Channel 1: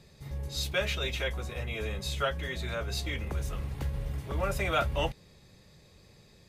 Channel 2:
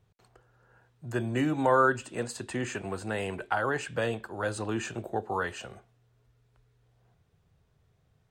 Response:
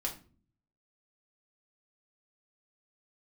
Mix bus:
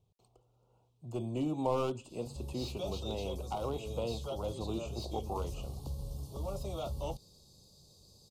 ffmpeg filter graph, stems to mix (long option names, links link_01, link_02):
-filter_complex "[0:a]firequalizer=gain_entry='entry(1300,0);entry(2100,-15);entry(4300,10)':delay=0.05:min_phase=1,asoftclip=type=hard:threshold=-24.5dB,adelay=2050,volume=-6.5dB[link_01];[1:a]volume=-5.5dB[link_02];[link_01][link_02]amix=inputs=2:normalize=0,acrossover=split=3400[link_03][link_04];[link_04]acompressor=threshold=-55dB:ratio=4:attack=1:release=60[link_05];[link_03][link_05]amix=inputs=2:normalize=0,aeval=exprs='clip(val(0),-1,0.0376)':channel_layout=same,asuperstop=centerf=1700:order=4:qfactor=0.91"